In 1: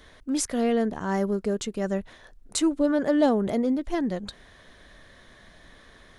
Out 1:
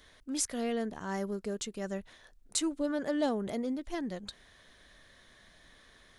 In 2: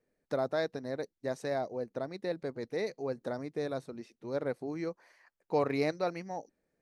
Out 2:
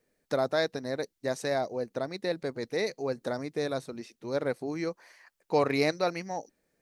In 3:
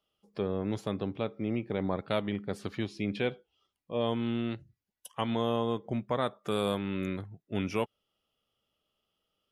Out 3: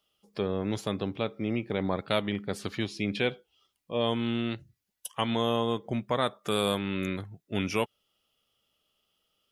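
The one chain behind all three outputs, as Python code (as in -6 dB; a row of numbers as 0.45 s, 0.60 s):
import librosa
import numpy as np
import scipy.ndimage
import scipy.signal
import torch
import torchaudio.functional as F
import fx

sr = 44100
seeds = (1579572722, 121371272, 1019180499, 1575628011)

y = fx.high_shelf(x, sr, hz=2000.0, db=7.5)
y = y * 10.0 ** (-12 / 20.0) / np.max(np.abs(y))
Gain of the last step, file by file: -10.0 dB, +3.5 dB, +1.5 dB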